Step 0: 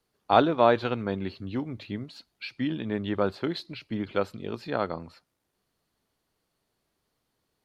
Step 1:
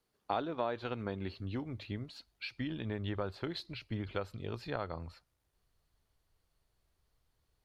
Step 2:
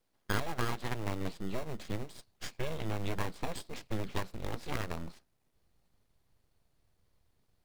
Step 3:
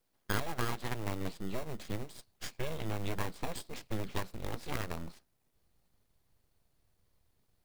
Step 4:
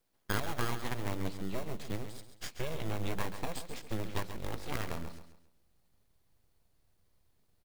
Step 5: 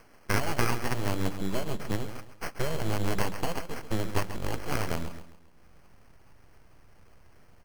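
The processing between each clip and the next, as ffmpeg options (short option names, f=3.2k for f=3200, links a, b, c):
-af "acompressor=threshold=-28dB:ratio=4,asubboost=boost=8.5:cutoff=77,volume=-4dB"
-filter_complex "[0:a]asplit=2[a][b];[b]acrusher=samples=27:mix=1:aa=0.000001,volume=-3dB[c];[a][c]amix=inputs=2:normalize=0,aeval=exprs='abs(val(0))':c=same,volume=1dB"
-af "highshelf=f=9.7k:g=6.5,volume=-1dB"
-af "aecho=1:1:135|270|405|540:0.316|0.108|0.0366|0.0124"
-af "acompressor=mode=upward:threshold=-49dB:ratio=2.5,acrusher=samples=12:mix=1:aa=0.000001,volume=6.5dB"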